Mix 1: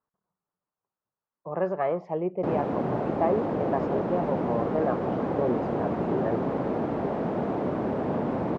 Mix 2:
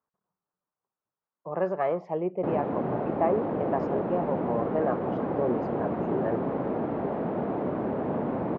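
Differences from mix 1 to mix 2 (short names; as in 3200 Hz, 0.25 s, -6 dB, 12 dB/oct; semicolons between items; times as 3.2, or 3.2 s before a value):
background: add air absorption 310 m; master: add low shelf 110 Hz -5.5 dB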